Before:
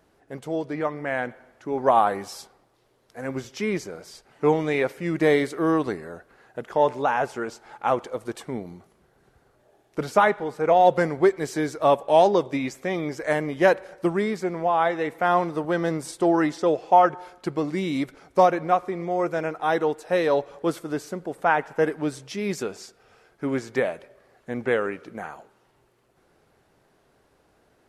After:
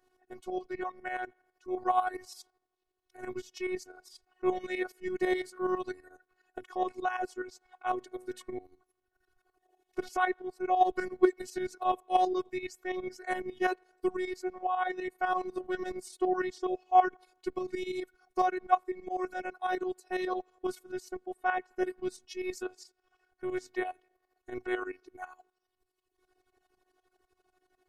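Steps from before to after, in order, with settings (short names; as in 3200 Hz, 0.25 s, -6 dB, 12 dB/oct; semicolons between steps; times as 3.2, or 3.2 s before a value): tremolo saw up 12 Hz, depth 70%; reverb removal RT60 1.6 s; 7.95–8.54 de-hum 127.8 Hz, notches 21; robotiser 367 Hz; in parallel at -1.5 dB: level quantiser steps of 19 dB; on the sum: gain -5 dB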